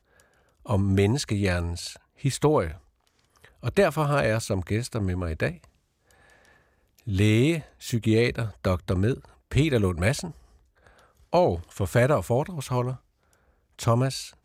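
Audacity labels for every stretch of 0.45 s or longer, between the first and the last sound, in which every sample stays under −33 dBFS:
2.730000	3.640000	silence
5.520000	7.070000	silence
10.300000	11.330000	silence
12.950000	13.790000	silence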